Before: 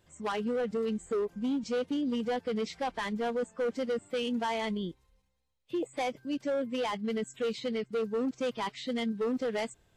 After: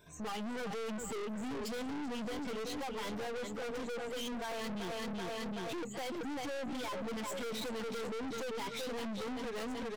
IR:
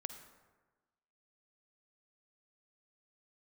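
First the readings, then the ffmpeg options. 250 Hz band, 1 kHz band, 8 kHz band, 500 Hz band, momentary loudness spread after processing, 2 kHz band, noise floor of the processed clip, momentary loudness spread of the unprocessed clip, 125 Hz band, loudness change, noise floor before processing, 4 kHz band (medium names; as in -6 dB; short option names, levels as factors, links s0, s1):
-7.0 dB, -5.5 dB, +2.5 dB, -8.0 dB, 1 LU, -3.0 dB, -42 dBFS, 4 LU, -3.0 dB, -6.5 dB, -71 dBFS, -2.5 dB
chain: -af "afftfilt=real='re*pow(10,18/40*sin(2*PI*(1.6*log(max(b,1)*sr/1024/100)/log(2)-(1.6)*(pts-256)/sr)))':imag='im*pow(10,18/40*sin(2*PI*(1.6*log(max(b,1)*sr/1024/100)/log(2)-(1.6)*(pts-256)/sr)))':win_size=1024:overlap=0.75,dynaudnorm=f=170:g=7:m=5.01,aecho=1:1:382|764|1146|1528|1910:0.355|0.17|0.0817|0.0392|0.0188,acompressor=threshold=0.0251:ratio=2.5,alimiter=limit=0.075:level=0:latency=1:release=240,equalizer=f=450:t=o:w=0.23:g=2.5,aeval=exprs='(tanh(141*val(0)+0.4)-tanh(0.4))/141':c=same,volume=1.68"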